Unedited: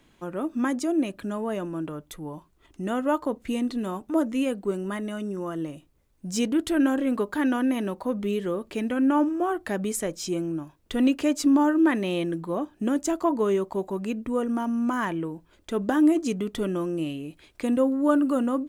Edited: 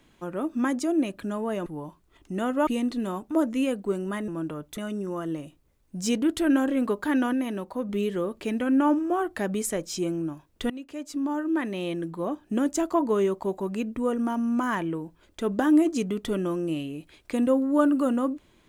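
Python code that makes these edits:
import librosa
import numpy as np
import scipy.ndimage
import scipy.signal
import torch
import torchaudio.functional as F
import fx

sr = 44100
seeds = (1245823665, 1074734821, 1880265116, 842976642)

y = fx.edit(x, sr, fx.move(start_s=1.66, length_s=0.49, to_s=5.07),
    fx.cut(start_s=3.16, length_s=0.3),
    fx.clip_gain(start_s=7.63, length_s=0.56, db=-3.0),
    fx.fade_in_from(start_s=11.0, length_s=1.84, floor_db=-20.5), tone=tone)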